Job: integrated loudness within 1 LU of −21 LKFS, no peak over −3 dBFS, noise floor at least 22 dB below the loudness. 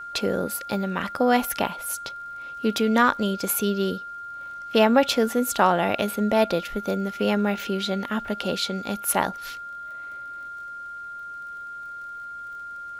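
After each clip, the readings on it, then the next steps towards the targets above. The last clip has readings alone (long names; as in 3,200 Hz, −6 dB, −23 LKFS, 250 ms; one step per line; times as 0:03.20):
crackle rate 34 per second; interfering tone 1,400 Hz; level of the tone −34 dBFS; integrated loudness −24.0 LKFS; sample peak −5.0 dBFS; target loudness −21.0 LKFS
→ click removal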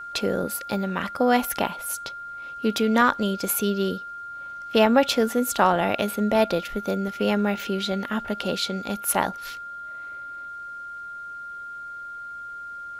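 crackle rate 0.077 per second; interfering tone 1,400 Hz; level of the tone −34 dBFS
→ notch filter 1,400 Hz, Q 30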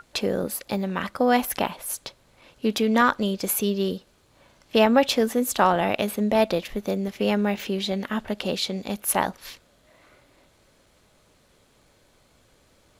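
interfering tone none found; integrated loudness −24.0 LKFS; sample peak −5.0 dBFS; target loudness −21.0 LKFS
→ level +3 dB
brickwall limiter −3 dBFS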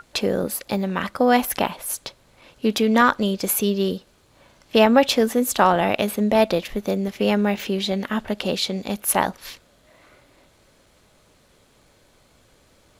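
integrated loudness −21.0 LKFS; sample peak −3.0 dBFS; background noise floor −58 dBFS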